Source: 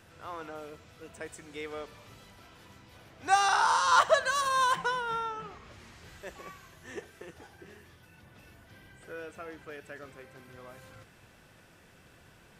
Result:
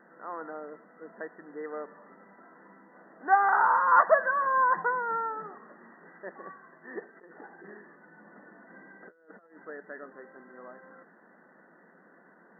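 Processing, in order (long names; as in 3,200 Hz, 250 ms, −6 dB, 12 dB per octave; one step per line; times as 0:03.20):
0:07.16–0:09.57: compressor whose output falls as the input rises −50 dBFS, ratio −0.5
linear-phase brick-wall band-pass 170–2,000 Hz
level +2.5 dB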